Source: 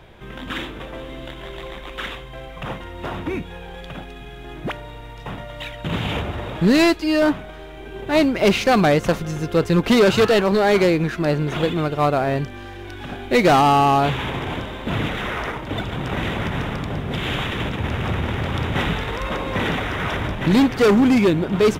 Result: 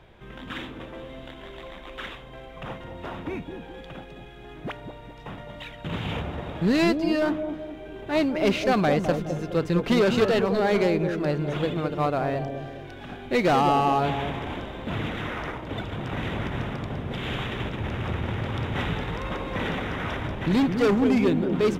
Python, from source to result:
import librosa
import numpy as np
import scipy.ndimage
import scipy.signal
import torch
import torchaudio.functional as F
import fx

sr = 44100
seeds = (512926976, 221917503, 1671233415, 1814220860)

y = fx.high_shelf(x, sr, hz=6900.0, db=-6.5)
y = fx.echo_bbd(y, sr, ms=209, stages=1024, feedback_pct=45, wet_db=-6)
y = F.gain(torch.from_numpy(y), -6.5).numpy()